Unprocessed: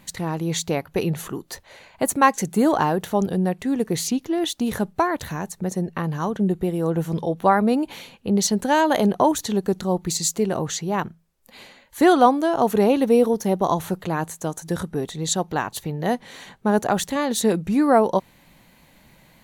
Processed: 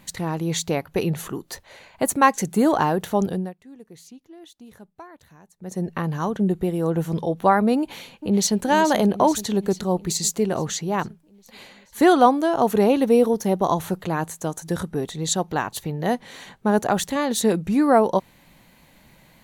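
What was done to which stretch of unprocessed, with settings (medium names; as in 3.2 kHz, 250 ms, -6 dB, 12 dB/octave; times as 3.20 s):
3.28–5.85 s: dip -21.5 dB, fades 0.26 s
7.79–8.62 s: echo throw 430 ms, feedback 65%, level -11 dB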